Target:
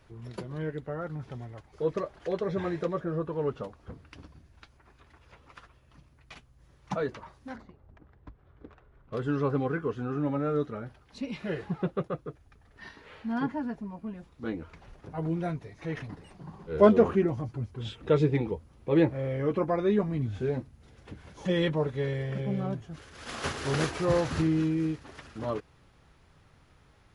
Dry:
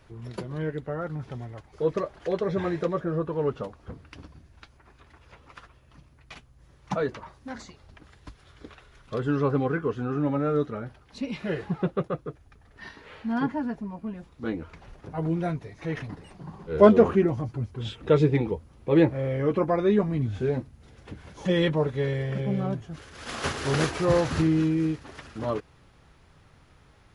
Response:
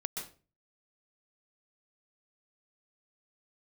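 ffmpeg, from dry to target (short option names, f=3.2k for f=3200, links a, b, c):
-filter_complex "[0:a]asettb=1/sr,asplit=3[a][b][c];[a]atrim=end=7.564[d];[b]atrim=start=7.56:end=9.15,asetpts=PTS-STARTPTS,afade=t=in:d=0.004:c=qsin,afade=t=out:st=1.586:d=0.004:c=qsin,adynamicsmooth=sensitivity=6:basefreq=1k[e];[c]atrim=start=9.146[f];[d][e]acrossfade=d=0.004:c1=hsin:c2=qsin[g];[g][f]acrossfade=d=0.004:c1=qsin:c2=hsin,volume=-3.5dB"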